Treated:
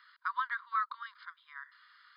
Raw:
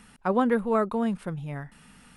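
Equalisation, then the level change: brick-wall FIR high-pass 950 Hz; brick-wall FIR low-pass 5100 Hz; fixed phaser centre 2600 Hz, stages 6; 0.0 dB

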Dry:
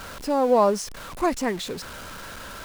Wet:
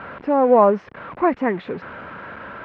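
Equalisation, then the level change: HPF 120 Hz 12 dB/oct; LPF 2200 Hz 24 dB/oct; +5.0 dB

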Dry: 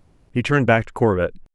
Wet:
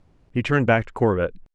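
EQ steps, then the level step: air absorption 59 m; -2.0 dB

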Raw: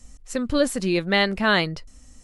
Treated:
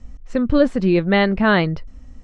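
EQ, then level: LPF 2100 Hz 6 dB/oct; air absorption 110 m; low shelf 290 Hz +5 dB; +4.5 dB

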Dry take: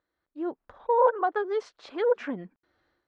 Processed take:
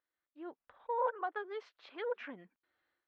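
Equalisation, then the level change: band-pass 2800 Hz, Q 1.3; tilt -3.5 dB/oct; 0.0 dB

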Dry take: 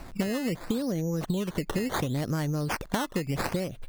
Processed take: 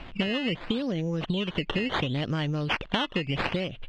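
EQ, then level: synth low-pass 3000 Hz, resonance Q 5; 0.0 dB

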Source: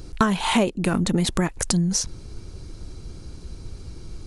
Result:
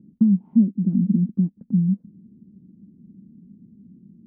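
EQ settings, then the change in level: Butterworth band-pass 210 Hz, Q 3.2; air absorption 390 m; +7.0 dB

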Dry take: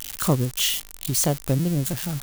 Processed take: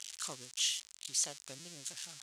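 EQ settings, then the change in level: band-pass 7300 Hz, Q 1.1; air absorption 84 m; 0.0 dB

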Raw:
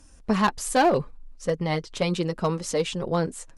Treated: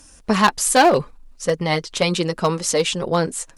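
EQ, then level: tilt +1.5 dB/oct; +7.0 dB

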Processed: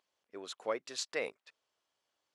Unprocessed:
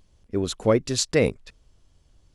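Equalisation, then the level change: HPF 740 Hz 12 dB/oct; high shelf 5400 Hz -11 dB; -8.0 dB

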